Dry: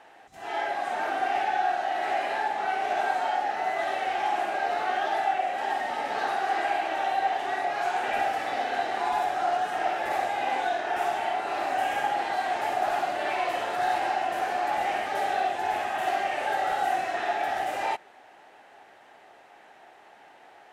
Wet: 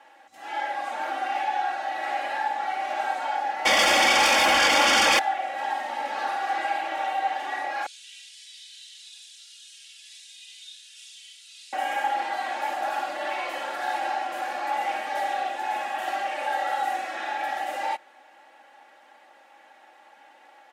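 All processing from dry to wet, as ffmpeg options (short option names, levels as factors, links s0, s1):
-filter_complex "[0:a]asettb=1/sr,asplit=3[s0][s1][s2];[s0]atrim=end=3.654[s3];[s1]atrim=start=3.65:end=5.19,asetpts=PTS-STARTPTS,afade=t=in:d=0.004:c=qsin,afade=t=out:st=1.536:d=0.004:c=qsin,highshelf=f=4700:g=4.5,aeval=exprs='0.168*sin(PI/2*5.62*val(0)/0.168)':c=same,asuperstop=centerf=4000:order=4:qfactor=7.1[s4];[s2]atrim=start=5.186[s5];[s3][s4]acrossfade=d=0.004:c1=hsin:c2=qsin[s6];[s6][s5]acrossfade=d=0.004:c1=qsin:c2=hsin,asettb=1/sr,asplit=3[s7][s8][s9];[s7]atrim=end=7.864[s10];[s8]atrim=start=7.86:end=11.73,asetpts=PTS-STARTPTS,afade=t=in:d=0.004:c=qsin,afade=t=out:st=3.866:d=0.004:c=qsin,acrusher=bits=8:dc=4:mix=0:aa=0.000001,asuperpass=centerf=5800:order=8:qfactor=0.88[s11];[s9]atrim=start=11.726[s12];[s10][s11]acrossfade=d=0.004:c1=hsin:c2=qsin[s13];[s13][s12]acrossfade=d=0.004:c1=qsin:c2=hsin,highpass=f=440:p=1,aecho=1:1:3.6:0.99,volume=0.75"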